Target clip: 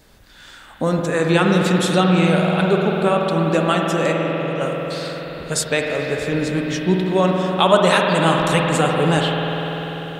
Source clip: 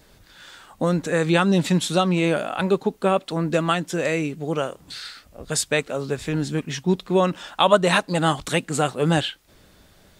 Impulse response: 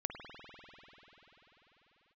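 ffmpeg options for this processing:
-filter_complex "[0:a]asplit=3[a][b][c];[a]afade=t=out:st=4.11:d=0.02[d];[b]acompressor=threshold=-32dB:ratio=6,afade=t=in:st=4.11:d=0.02,afade=t=out:st=4.6:d=0.02[e];[c]afade=t=in:st=4.6:d=0.02[f];[d][e][f]amix=inputs=3:normalize=0[g];[1:a]atrim=start_sample=2205[h];[g][h]afir=irnorm=-1:irlink=0,volume=3.5dB"

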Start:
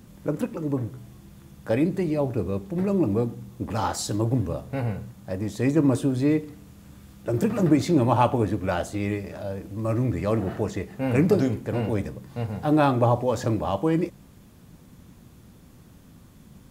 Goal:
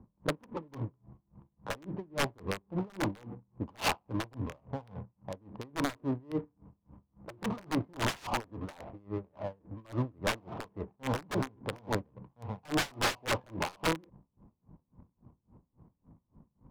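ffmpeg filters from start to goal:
-filter_complex "[0:a]acrossover=split=510[a][b];[a]alimiter=limit=-17dB:level=0:latency=1:release=46[c];[b]lowpass=f=1k:t=q:w=5[d];[c][d]amix=inputs=2:normalize=0,aeval=exprs='(mod(5.62*val(0)+1,2)-1)/5.62':c=same,adynamicsmooth=sensitivity=4:basefreq=510,aeval=exprs='val(0)*pow(10,-29*(0.5-0.5*cos(2*PI*3.6*n/s))/20)':c=same,volume=-4.5dB"

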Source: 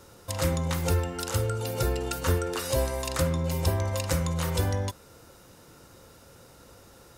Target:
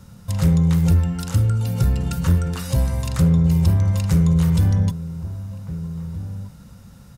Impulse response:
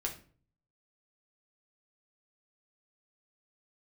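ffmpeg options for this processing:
-filter_complex "[0:a]lowshelf=f=260:t=q:w=3:g=11,acontrast=70,asplit=2[a][b];[b]adelay=1574,volume=-13dB,highshelf=f=4k:g=-35.4[c];[a][c]amix=inputs=2:normalize=0,volume=-7dB"

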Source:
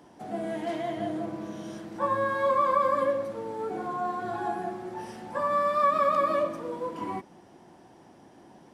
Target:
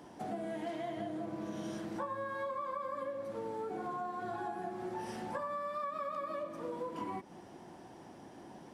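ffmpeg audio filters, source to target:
-af "acompressor=threshold=-37dB:ratio=12,volume=1dB"

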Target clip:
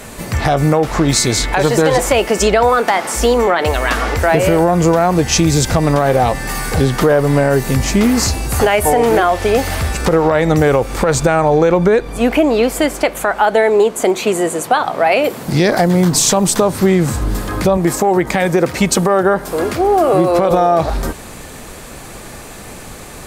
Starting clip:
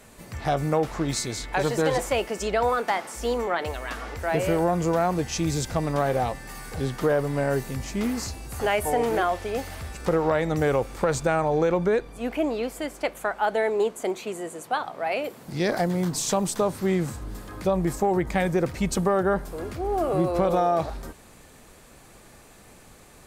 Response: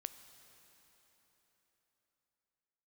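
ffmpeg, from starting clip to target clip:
-filter_complex "[0:a]asettb=1/sr,asplit=3[a][b][c];[a]atrim=end=17.774[d];[b]atrim=start=17.77:end=20.51,asetpts=PTS-STARTPTS,afade=t=in:d=0.004:c=qsin,afade=t=out:st=2.736:d=0.004:c=qsin,highpass=f=260:p=1[e];[c]atrim=start=20.506[f];[d][e]acrossfade=d=0.004:c1=hsin:c2=qsin[g];[g][f]acrossfade=d=0.004:c1=qsin:c2=hsin,acompressor=threshold=-27dB:ratio=4,alimiter=level_in=19dB:limit=-1dB:release=50:level=0:latency=1,volume=-1dB"

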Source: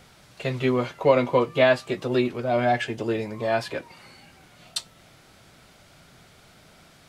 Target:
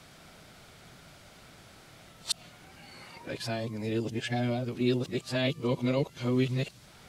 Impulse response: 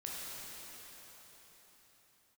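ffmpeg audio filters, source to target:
-filter_complex "[0:a]areverse,acrossover=split=320|3000[a][b][c];[b]acompressor=threshold=-44dB:ratio=2.5[d];[a][d][c]amix=inputs=3:normalize=0"

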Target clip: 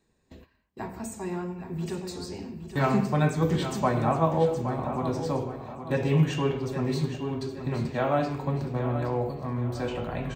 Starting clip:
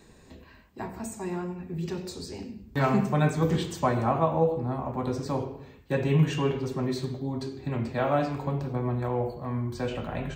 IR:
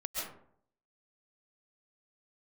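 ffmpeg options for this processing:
-af "agate=range=-17dB:threshold=-49dB:ratio=16:detection=peak,aecho=1:1:818|1636|2454|3272:0.316|0.117|0.0433|0.016"

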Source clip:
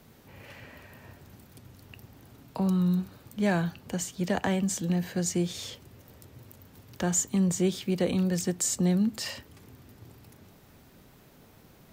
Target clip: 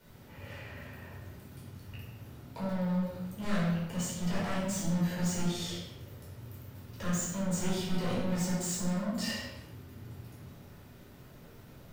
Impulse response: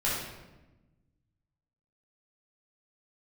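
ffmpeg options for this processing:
-filter_complex "[0:a]asoftclip=type=hard:threshold=-32dB[a];[1:a]atrim=start_sample=2205,afade=t=out:st=0.44:d=0.01,atrim=end_sample=19845[b];[a][b]afir=irnorm=-1:irlink=0,volume=-8dB"

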